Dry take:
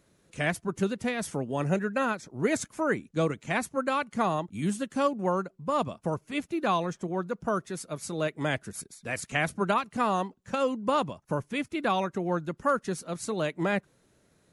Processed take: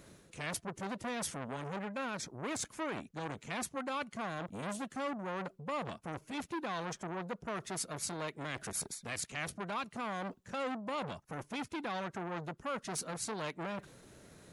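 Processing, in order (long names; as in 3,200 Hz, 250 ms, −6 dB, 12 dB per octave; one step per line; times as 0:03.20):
dynamic equaliser 3,700 Hz, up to +4 dB, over −46 dBFS, Q 1.1
reversed playback
downward compressor 6 to 1, threshold −39 dBFS, peak gain reduction 18 dB
reversed playback
brickwall limiter −34.5 dBFS, peak gain reduction 7.5 dB
saturating transformer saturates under 1,100 Hz
level +9 dB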